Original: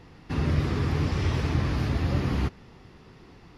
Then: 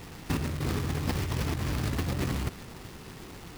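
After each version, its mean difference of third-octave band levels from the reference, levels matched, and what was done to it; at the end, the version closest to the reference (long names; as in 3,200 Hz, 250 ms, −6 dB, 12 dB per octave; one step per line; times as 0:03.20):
8.5 dB: log-companded quantiser 4 bits
compressor whose output falls as the input rises −30 dBFS, ratio −1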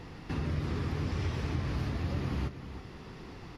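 4.0 dB: downward compressor 2 to 1, threshold −45 dBFS, peak gain reduction 14.5 dB
single-tap delay 320 ms −10.5 dB
level +4.5 dB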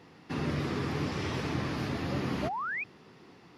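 3.0 dB: high-pass filter 170 Hz 12 dB per octave
sound drawn into the spectrogram rise, 0:02.42–0:02.84, 560–2,600 Hz −32 dBFS
level −2 dB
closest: third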